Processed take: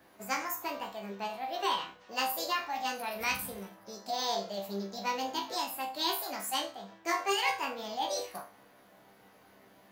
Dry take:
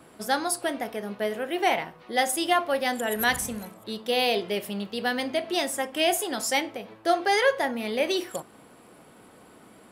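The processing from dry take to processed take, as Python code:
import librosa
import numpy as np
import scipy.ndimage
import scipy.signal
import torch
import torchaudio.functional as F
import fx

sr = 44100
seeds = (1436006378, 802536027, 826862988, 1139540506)

y = fx.formant_shift(x, sr, semitones=6)
y = fx.resonator_bank(y, sr, root=36, chord='fifth', decay_s=0.33)
y = y * librosa.db_to_amplitude(2.5)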